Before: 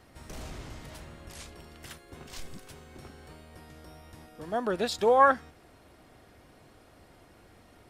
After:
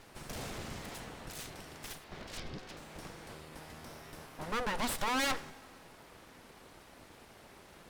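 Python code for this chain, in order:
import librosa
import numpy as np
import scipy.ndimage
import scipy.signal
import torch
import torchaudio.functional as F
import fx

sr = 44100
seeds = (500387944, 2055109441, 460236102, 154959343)

y = fx.steep_lowpass(x, sr, hz=5300.0, slope=36, at=(2.04, 2.77))
y = np.abs(y)
y = fx.tube_stage(y, sr, drive_db=21.0, bias=0.65)
y = fx.rev_plate(y, sr, seeds[0], rt60_s=1.9, hf_ratio=0.9, predelay_ms=0, drr_db=18.0)
y = F.gain(torch.from_numpy(y), 8.5).numpy()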